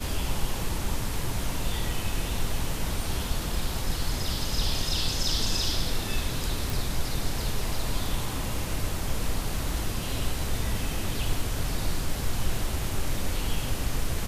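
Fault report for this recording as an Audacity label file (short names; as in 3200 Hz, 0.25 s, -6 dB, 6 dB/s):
6.700000	6.700000	pop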